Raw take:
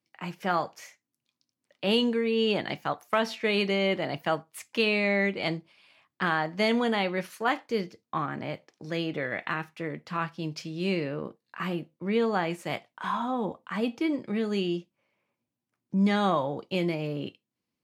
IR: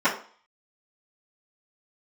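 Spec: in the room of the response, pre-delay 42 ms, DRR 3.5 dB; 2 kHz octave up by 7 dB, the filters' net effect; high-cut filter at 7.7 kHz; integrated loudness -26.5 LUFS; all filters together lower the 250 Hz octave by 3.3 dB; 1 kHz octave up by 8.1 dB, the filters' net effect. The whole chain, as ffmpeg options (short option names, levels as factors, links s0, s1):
-filter_complex "[0:a]lowpass=7700,equalizer=f=250:t=o:g=-5,equalizer=f=1000:t=o:g=9,equalizer=f=2000:t=o:g=6,asplit=2[s0][s1];[1:a]atrim=start_sample=2205,adelay=42[s2];[s1][s2]afir=irnorm=-1:irlink=0,volume=0.0944[s3];[s0][s3]amix=inputs=2:normalize=0,volume=0.668"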